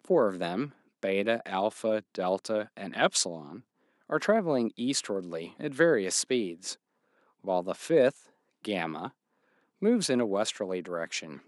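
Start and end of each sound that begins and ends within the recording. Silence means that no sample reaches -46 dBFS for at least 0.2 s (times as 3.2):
1.03–3.6
4.1–6.74
7.44–8.2
8.65–9.09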